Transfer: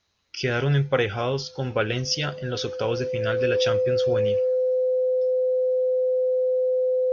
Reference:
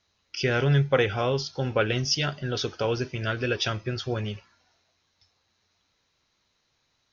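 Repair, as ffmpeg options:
ffmpeg -i in.wav -af "bandreject=frequency=510:width=30" out.wav

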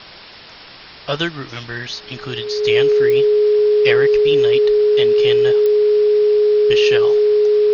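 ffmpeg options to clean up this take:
ffmpeg -i in.wav -af "adeclick=threshold=4,bandreject=frequency=420:width=30,afwtdn=0.02" out.wav

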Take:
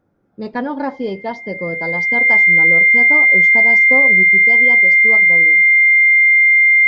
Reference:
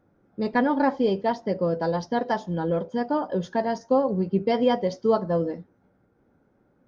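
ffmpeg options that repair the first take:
ffmpeg -i in.wav -af "bandreject=frequency=2100:width=30,asetnsamples=nb_out_samples=441:pad=0,asendcmd='4.23 volume volume 6dB',volume=0dB" out.wav

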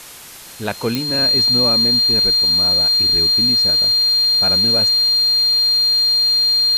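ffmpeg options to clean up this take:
ffmpeg -i in.wav -af "adeclick=threshold=4,bandreject=frequency=4200:width=30,afftdn=noise_reduction=30:noise_floor=-30" out.wav

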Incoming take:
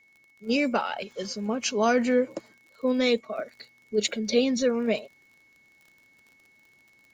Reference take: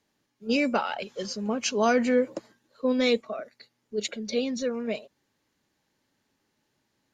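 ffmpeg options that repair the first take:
ffmpeg -i in.wav -af "adeclick=threshold=4,bandreject=frequency=2200:width=30,asetnsamples=nb_out_samples=441:pad=0,asendcmd='3.38 volume volume -5dB',volume=0dB" out.wav

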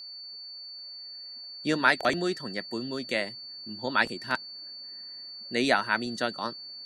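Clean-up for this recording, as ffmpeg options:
ffmpeg -i in.wav -af "adeclick=threshold=4,bandreject=frequency=4500:width=30" out.wav

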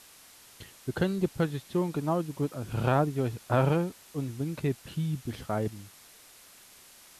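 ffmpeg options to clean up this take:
ffmpeg -i in.wav -af "afwtdn=0.0025" out.wav

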